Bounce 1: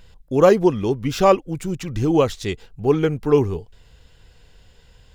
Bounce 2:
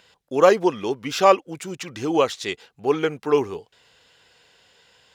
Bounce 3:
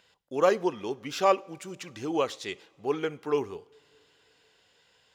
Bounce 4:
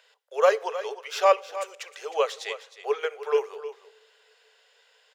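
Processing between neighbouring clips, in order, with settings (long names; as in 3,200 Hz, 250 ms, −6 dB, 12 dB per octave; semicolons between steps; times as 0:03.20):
meter weighting curve A; level +1.5 dB
coupled-rooms reverb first 0.53 s, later 3.5 s, from −18 dB, DRR 19 dB; level −8 dB
Chebyshev high-pass with heavy ripple 420 Hz, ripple 3 dB; single-tap delay 311 ms −13.5 dB; level +4.5 dB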